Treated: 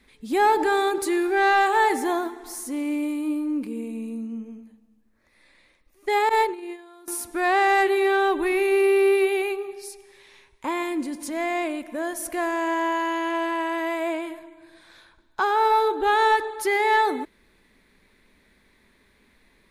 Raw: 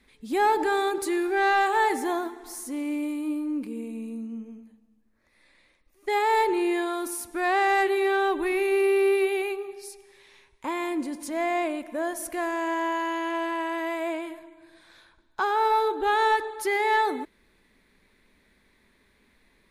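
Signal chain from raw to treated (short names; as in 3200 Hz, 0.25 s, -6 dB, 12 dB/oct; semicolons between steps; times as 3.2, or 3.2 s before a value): 6.29–7.08 gate -22 dBFS, range -22 dB; 10.82–12.25 dynamic EQ 730 Hz, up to -4 dB, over -40 dBFS, Q 0.76; gain +3 dB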